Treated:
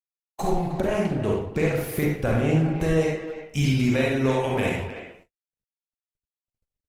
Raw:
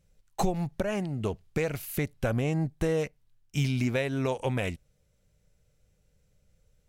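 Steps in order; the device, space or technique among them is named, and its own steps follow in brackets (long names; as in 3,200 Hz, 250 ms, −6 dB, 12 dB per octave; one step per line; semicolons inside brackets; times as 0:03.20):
0:01.06–0:03.01: high-shelf EQ 7,600 Hz −3.5 dB
speakerphone in a meeting room (convolution reverb RT60 0.75 s, pre-delay 34 ms, DRR −2.5 dB; far-end echo of a speakerphone 310 ms, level −11 dB; automatic gain control gain up to 8.5 dB; noise gate −45 dBFS, range −47 dB; level −5.5 dB; Opus 20 kbit/s 48,000 Hz)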